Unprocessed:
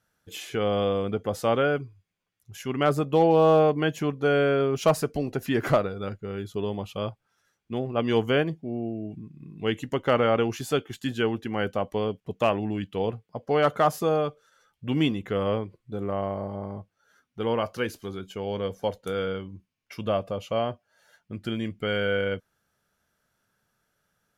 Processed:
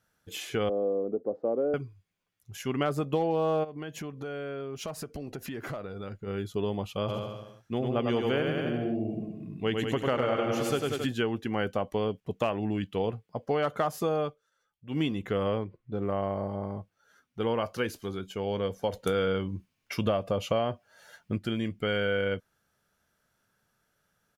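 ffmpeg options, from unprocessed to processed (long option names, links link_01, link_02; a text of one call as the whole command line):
ffmpeg -i in.wav -filter_complex "[0:a]asettb=1/sr,asplit=3[link_01][link_02][link_03];[link_01]atrim=end=0.694[link_04];[link_02]atrim=start=0.69:end=1.74,asetpts=PTS-STARTPTS,afade=type=in:duration=0.004:curve=qsin,afade=type=out:start_time=1.046:duration=0.004:curve=qsin,asuperpass=centerf=390:order=4:qfactor=1.1[link_05];[link_03]atrim=start=1.736[link_06];[link_04][link_05]acrossfade=duration=0.004:curve1=hsin:curve2=qsin[link_07];[link_07][link_06]acrossfade=duration=0.004:curve1=qsin:curve2=hsin,asplit=3[link_08][link_09][link_10];[link_08]afade=type=out:start_time=3.63:duration=0.02[link_11];[link_09]acompressor=threshold=-35dB:ratio=5:attack=3.2:release=140:knee=1:detection=peak,afade=type=in:start_time=3.63:duration=0.02,afade=type=out:start_time=6.26:duration=0.02[link_12];[link_10]afade=type=in:start_time=6.26:duration=0.02[link_13];[link_11][link_12][link_13]amix=inputs=3:normalize=0,asplit=3[link_14][link_15][link_16];[link_14]afade=type=out:start_time=7.08:duration=0.02[link_17];[link_15]aecho=1:1:100|190|271|343.9|409.5|468.6|521.7:0.631|0.398|0.251|0.158|0.1|0.0631|0.0398,afade=type=in:start_time=7.08:duration=0.02,afade=type=out:start_time=11.05:duration=0.02[link_18];[link_16]afade=type=in:start_time=11.05:duration=0.02[link_19];[link_17][link_18][link_19]amix=inputs=3:normalize=0,asettb=1/sr,asplit=3[link_20][link_21][link_22];[link_20]atrim=end=15.624[link_23];[link_21]atrim=start=15.62:end=16.04,asetpts=PTS-STARTPTS,afade=type=in:duration=0.004:curve=qsin,afade=type=out:start_time=0.416:duration=0.004:curve=qsin,adynamicsmooth=sensitivity=7.5:basefreq=3000[link_24];[link_22]atrim=start=16.036[link_25];[link_23][link_24]acrossfade=duration=0.004:curve1=hsin:curve2=qsin[link_26];[link_26][link_25]acrossfade=duration=0.004:curve1=qsin:curve2=hsin,asplit=3[link_27][link_28][link_29];[link_27]afade=type=out:start_time=18.92:duration=0.02[link_30];[link_28]acontrast=79,afade=type=in:start_time=18.92:duration=0.02,afade=type=out:start_time=21.37:duration=0.02[link_31];[link_29]afade=type=in:start_time=21.37:duration=0.02[link_32];[link_30][link_31][link_32]amix=inputs=3:normalize=0,asplit=3[link_33][link_34][link_35];[link_33]atrim=end=14.38,asetpts=PTS-STARTPTS,afade=type=out:start_time=14.23:duration=0.15:silence=0.223872[link_36];[link_34]atrim=start=14.38:end=14.89,asetpts=PTS-STARTPTS,volume=-13dB[link_37];[link_35]atrim=start=14.89,asetpts=PTS-STARTPTS,afade=type=in:duration=0.15:silence=0.223872[link_38];[link_36][link_37][link_38]concat=n=3:v=0:a=1,acompressor=threshold=-24dB:ratio=6" out.wav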